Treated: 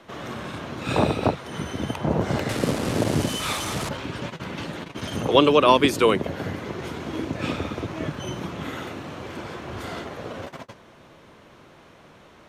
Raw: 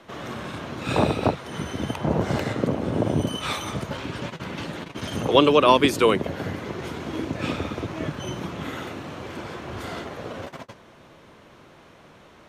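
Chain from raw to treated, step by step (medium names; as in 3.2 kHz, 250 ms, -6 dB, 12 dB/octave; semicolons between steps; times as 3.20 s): 2.49–3.89 s: one-bit delta coder 64 kbps, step -23 dBFS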